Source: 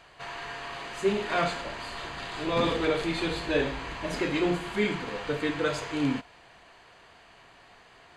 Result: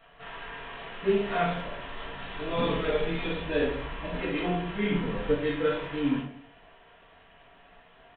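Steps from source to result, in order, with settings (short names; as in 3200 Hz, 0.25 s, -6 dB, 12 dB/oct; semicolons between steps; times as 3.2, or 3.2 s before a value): 2.69–3.09 comb 4.8 ms, depth 51%; 4.91–5.34 low shelf 380 Hz +8 dB; reverb RT60 0.45 s, pre-delay 4 ms, DRR -3.5 dB; downsampling 8000 Hz; speakerphone echo 0.18 s, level -25 dB; gain -8 dB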